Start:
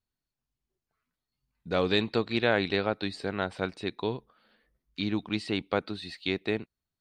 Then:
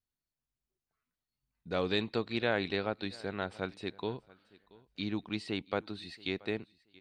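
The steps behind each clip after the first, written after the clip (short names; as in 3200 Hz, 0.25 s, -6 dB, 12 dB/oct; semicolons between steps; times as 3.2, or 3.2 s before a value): feedback echo 0.679 s, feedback 18%, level -23 dB; gain -5.5 dB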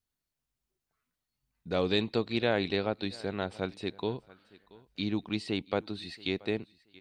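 dynamic EQ 1500 Hz, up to -5 dB, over -51 dBFS, Q 1.1; gain +4 dB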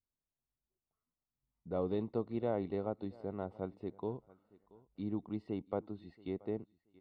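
polynomial smoothing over 65 samples; gain -6 dB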